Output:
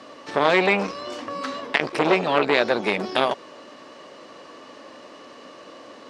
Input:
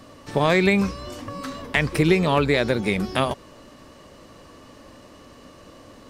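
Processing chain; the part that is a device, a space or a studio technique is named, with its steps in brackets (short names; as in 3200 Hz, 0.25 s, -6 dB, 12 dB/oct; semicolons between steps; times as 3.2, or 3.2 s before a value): public-address speaker with an overloaded transformer (core saturation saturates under 1200 Hz; BPF 340–5300 Hz); gain +5.5 dB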